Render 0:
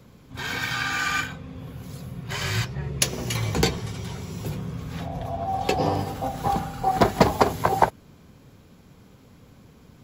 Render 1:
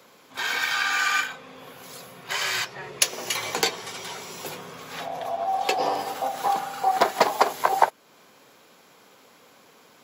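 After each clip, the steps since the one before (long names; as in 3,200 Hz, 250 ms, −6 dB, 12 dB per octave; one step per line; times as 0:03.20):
high-pass filter 570 Hz 12 dB per octave
in parallel at 0 dB: downward compressor, threshold −33 dBFS, peak gain reduction 19.5 dB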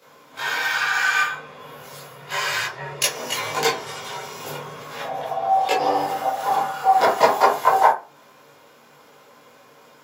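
convolution reverb RT60 0.30 s, pre-delay 13 ms, DRR −9.5 dB
level −6 dB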